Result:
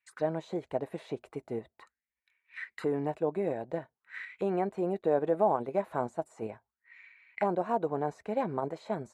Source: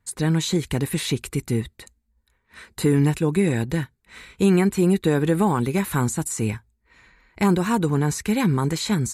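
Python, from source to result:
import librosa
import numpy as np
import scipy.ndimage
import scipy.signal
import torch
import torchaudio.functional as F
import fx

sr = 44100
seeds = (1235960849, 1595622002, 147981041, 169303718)

p1 = fx.level_steps(x, sr, step_db=22)
p2 = x + F.gain(torch.from_numpy(p1), -2.5).numpy()
p3 = fx.auto_wah(p2, sr, base_hz=640.0, top_hz=2500.0, q=6.3, full_db=-21.5, direction='down')
y = F.gain(torch.from_numpy(p3), 4.0).numpy()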